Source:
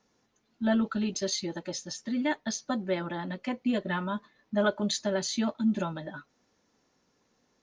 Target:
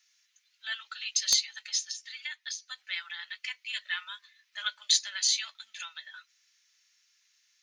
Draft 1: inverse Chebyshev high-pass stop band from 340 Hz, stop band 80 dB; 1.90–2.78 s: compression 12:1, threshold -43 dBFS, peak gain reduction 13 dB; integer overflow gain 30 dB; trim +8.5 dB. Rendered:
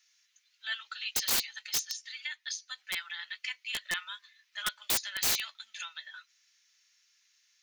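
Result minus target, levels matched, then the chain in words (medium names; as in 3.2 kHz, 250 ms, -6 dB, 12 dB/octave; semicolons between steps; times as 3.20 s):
integer overflow: distortion +30 dB
inverse Chebyshev high-pass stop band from 340 Hz, stop band 80 dB; 1.90–2.78 s: compression 12:1, threshold -43 dBFS, peak gain reduction 13 dB; integer overflow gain 18.5 dB; trim +8.5 dB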